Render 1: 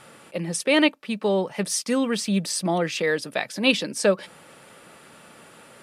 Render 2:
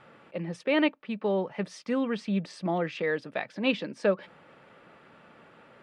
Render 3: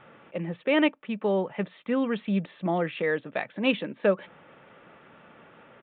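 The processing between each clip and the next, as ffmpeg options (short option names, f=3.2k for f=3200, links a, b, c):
-af "lowpass=2.5k,volume=-5dB"
-af "aresample=8000,aresample=44100,volume=2dB"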